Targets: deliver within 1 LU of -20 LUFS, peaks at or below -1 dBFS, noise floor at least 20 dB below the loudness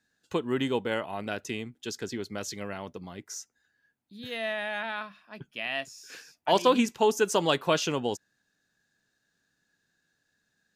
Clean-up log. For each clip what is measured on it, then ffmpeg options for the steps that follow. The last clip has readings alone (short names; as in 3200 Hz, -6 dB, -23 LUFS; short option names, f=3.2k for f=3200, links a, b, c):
loudness -29.5 LUFS; peak -9.0 dBFS; loudness target -20.0 LUFS
-> -af "volume=9.5dB,alimiter=limit=-1dB:level=0:latency=1"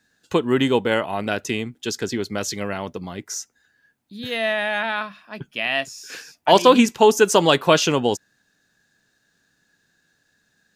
loudness -20.5 LUFS; peak -1.0 dBFS; noise floor -68 dBFS